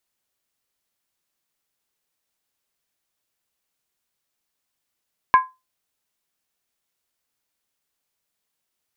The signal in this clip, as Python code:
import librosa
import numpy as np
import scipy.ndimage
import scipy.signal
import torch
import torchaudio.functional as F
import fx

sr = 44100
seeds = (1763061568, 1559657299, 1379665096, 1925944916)

y = fx.strike_skin(sr, length_s=0.63, level_db=-6.0, hz=1030.0, decay_s=0.23, tilt_db=9.5, modes=5)